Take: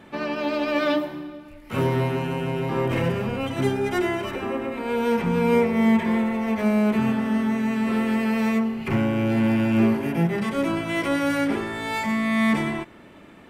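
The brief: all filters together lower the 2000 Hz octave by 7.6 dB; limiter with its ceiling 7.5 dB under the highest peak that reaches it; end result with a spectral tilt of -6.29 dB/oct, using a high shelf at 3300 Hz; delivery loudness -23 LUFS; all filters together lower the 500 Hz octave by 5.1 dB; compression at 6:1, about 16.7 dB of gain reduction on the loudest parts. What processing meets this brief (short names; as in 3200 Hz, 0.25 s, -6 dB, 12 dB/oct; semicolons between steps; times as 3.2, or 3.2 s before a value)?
bell 500 Hz -6 dB; bell 2000 Hz -7.5 dB; high shelf 3300 Hz -4.5 dB; compressor 6:1, threshold -36 dBFS; gain +17.5 dB; limiter -15 dBFS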